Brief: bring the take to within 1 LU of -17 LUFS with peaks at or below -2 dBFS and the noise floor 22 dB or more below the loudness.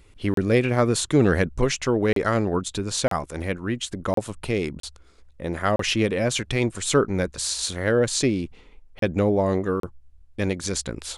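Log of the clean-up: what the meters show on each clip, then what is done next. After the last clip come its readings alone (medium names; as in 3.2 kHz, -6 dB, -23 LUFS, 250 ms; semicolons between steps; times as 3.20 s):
dropouts 8; longest dropout 33 ms; loudness -24.0 LUFS; peak level -6.5 dBFS; loudness target -17.0 LUFS
-> interpolate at 0.34/2.13/3.08/4.14/4.80/5.76/8.99/9.80 s, 33 ms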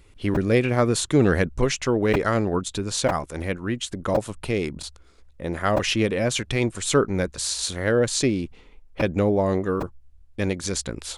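dropouts 0; loudness -23.5 LUFS; peak level -6.5 dBFS; loudness target -17.0 LUFS
-> trim +6.5 dB; peak limiter -2 dBFS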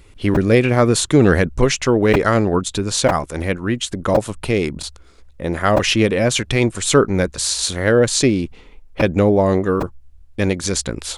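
loudness -17.5 LUFS; peak level -2.0 dBFS; noise floor -45 dBFS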